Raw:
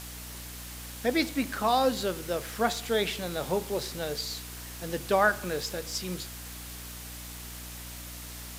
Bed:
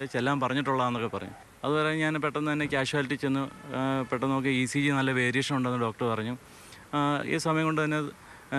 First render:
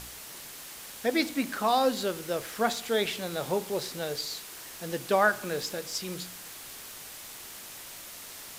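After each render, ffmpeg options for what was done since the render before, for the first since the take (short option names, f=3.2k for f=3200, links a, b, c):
-af "bandreject=f=60:t=h:w=4,bandreject=f=120:t=h:w=4,bandreject=f=180:t=h:w=4,bandreject=f=240:t=h:w=4,bandreject=f=300:t=h:w=4"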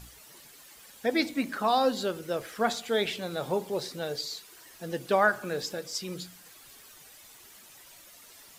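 -af "afftdn=nr=11:nf=-44"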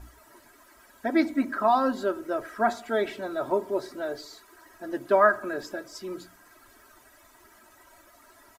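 -af "highshelf=f=2.1k:t=q:w=1.5:g=-10.5,aecho=1:1:3.1:0.95"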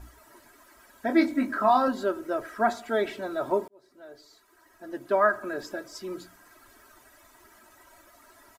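-filter_complex "[0:a]asettb=1/sr,asplit=3[a][b][c];[a]atrim=end=1.064[d];[b]atrim=start=1.06:end=1.88,asetpts=PTS-STARTPTS,afade=t=in:d=0.004:c=qsin,afade=t=out:st=0.816:d=0.004:c=qsin,asplit=2[e][f];[f]adelay=24,volume=-5.5dB[g];[e][g]amix=inputs=2:normalize=0,atrim=end_sample=36162[h];[c]atrim=start=1.876[i];[d][h]acrossfade=d=0.004:c1=hsin:c2=qsin[j];[j][i]acrossfade=d=0.004:c1=qsin:c2=hsin,asplit=2[k][l];[k]atrim=end=3.68,asetpts=PTS-STARTPTS,afade=t=out:st=3.676:d=0.004:c=hsin[m];[l]atrim=start=3.68,asetpts=PTS-STARTPTS,afade=t=in:d=2.1[n];[m][n]concat=n=2:v=0:a=1"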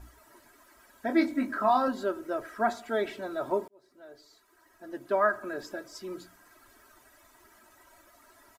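-af "volume=-3dB"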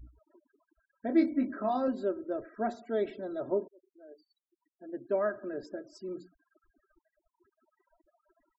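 -af "afftfilt=real='re*gte(hypot(re,im),0.00562)':imag='im*gte(hypot(re,im),0.00562)':win_size=1024:overlap=0.75,firequalizer=gain_entry='entry(520,0);entry(930,-13);entry(2400,-9)':delay=0.05:min_phase=1"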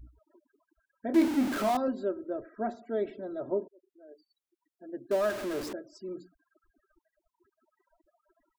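-filter_complex "[0:a]asettb=1/sr,asplit=3[a][b][c];[a]atrim=end=1.144[d];[b]atrim=start=1.14:end=1.77,asetpts=PTS-STARTPTS,afade=t=in:d=0.004:c=qsin,afade=t=out:st=0.626:d=0.004:c=qsin,aeval=exprs='val(0)+0.5*0.0335*sgn(val(0))':c=same[e];[c]atrim=start=1.766[f];[d][e]acrossfade=d=0.004:c1=hsin:c2=qsin[g];[g][f]acrossfade=d=0.004:c1=qsin:c2=hsin,asettb=1/sr,asplit=3[h][i][j];[h]atrim=end=2.304[k];[i]atrim=start=2.3:end=4.09,asetpts=PTS-STARTPTS,afade=t=in:d=0.004:c=qsin,afade=t=out:st=1.786:d=0.004:c=qsin,highshelf=f=2k:g=-6.5[l];[j]atrim=start=4.086[m];[k][l]acrossfade=d=0.004:c1=hsin:c2=qsin[n];[n][m]acrossfade=d=0.004:c1=qsin:c2=hsin,asettb=1/sr,asplit=3[o][p][q];[o]atrim=end=5.114[r];[p]atrim=start=5.11:end=5.73,asetpts=PTS-STARTPTS,afade=t=in:d=0.004:c=qsin,afade=t=out:st=0.616:d=0.004:c=qsin,aeval=exprs='val(0)+0.5*0.0211*sgn(val(0))':c=same[s];[q]atrim=start=5.726[t];[r][s]acrossfade=d=0.004:c1=hsin:c2=qsin[u];[u][t]acrossfade=d=0.004:c1=qsin:c2=hsin"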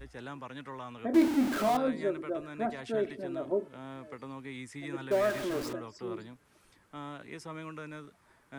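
-filter_complex "[1:a]volume=-16dB[a];[0:a][a]amix=inputs=2:normalize=0"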